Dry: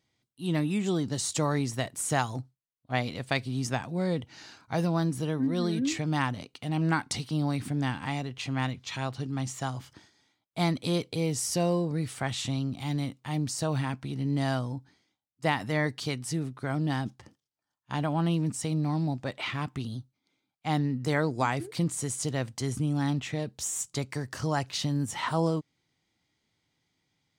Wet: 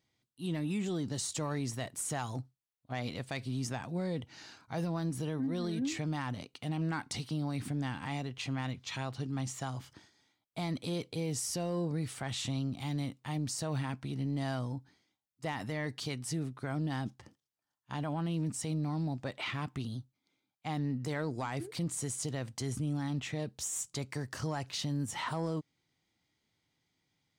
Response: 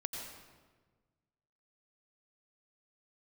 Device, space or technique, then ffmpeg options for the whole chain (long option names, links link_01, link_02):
soft clipper into limiter: -af "asoftclip=type=tanh:threshold=-17dB,alimiter=level_in=0.5dB:limit=-24dB:level=0:latency=1:release=55,volume=-0.5dB,volume=-3dB"